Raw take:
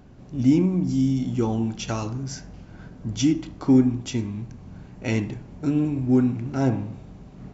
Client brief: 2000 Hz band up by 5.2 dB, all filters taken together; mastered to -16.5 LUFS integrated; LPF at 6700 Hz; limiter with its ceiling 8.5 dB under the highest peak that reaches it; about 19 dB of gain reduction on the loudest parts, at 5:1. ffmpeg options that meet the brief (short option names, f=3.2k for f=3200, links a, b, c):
-af "lowpass=6.7k,equalizer=f=2k:t=o:g=6.5,acompressor=threshold=-35dB:ratio=5,volume=23dB,alimiter=limit=-6.5dB:level=0:latency=1"